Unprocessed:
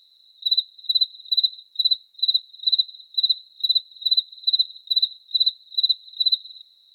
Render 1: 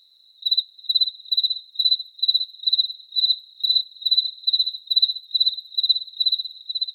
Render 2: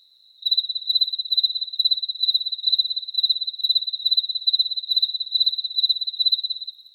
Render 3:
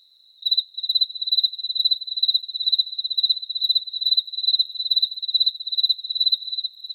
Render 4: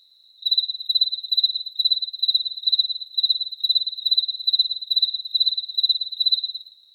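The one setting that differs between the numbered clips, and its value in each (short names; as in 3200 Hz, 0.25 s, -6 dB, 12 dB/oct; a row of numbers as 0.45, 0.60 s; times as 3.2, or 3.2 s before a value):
delay with a stepping band-pass, time: 0.491, 0.177, 0.318, 0.112 s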